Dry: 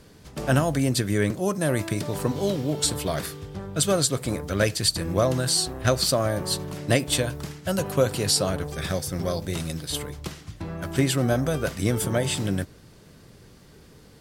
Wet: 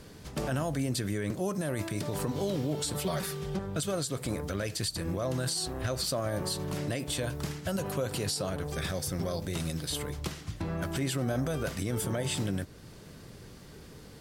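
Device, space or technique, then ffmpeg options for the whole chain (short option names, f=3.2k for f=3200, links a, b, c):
stacked limiters: -filter_complex "[0:a]asettb=1/sr,asplit=3[a][b][c];[a]atrim=end=2.944[d];[b]atrim=start=2.94:end=3.59,asetpts=PTS-STARTPTS,afade=t=in:d=0.004:c=qsin,afade=t=out:st=0.646:d=0.004:c=qsin,aecho=1:1:5.3:0.97,atrim=end_sample=28665[e];[c]atrim=start=3.586[f];[d][e]acrossfade=d=0.004:c1=hsin:c2=qsin[g];[g][f]acrossfade=d=0.004:c1=qsin:c2=hsin,alimiter=limit=-12dB:level=0:latency=1:release=292,alimiter=limit=-18.5dB:level=0:latency=1:release=49,alimiter=limit=-24dB:level=0:latency=1:release=277,volume=1.5dB"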